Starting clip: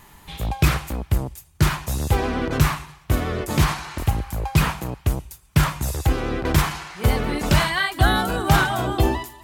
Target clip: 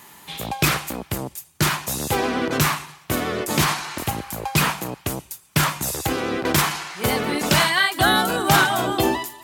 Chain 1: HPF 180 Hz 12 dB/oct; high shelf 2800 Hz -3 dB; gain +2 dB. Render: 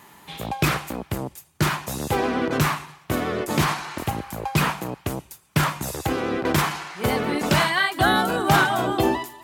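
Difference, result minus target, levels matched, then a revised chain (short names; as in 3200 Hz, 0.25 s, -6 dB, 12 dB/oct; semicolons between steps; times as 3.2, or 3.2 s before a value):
4000 Hz band -3.0 dB
HPF 180 Hz 12 dB/oct; high shelf 2800 Hz +5 dB; gain +2 dB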